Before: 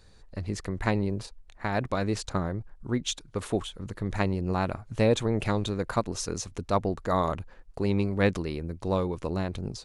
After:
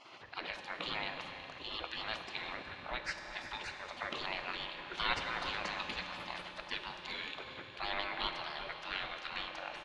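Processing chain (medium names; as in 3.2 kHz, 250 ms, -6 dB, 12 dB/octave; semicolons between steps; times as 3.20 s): high-order bell 2.3 kHz +11 dB; spectral gate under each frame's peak -25 dB weak; in parallel at +2 dB: compression, threshold -57 dBFS, peak gain reduction 21 dB; on the sum: distance through air 250 m; echo from a far wall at 63 m, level -11 dB; on a send at -4.5 dB: reverberation RT60 4.1 s, pre-delay 3 ms; on the sum: trim +8 dB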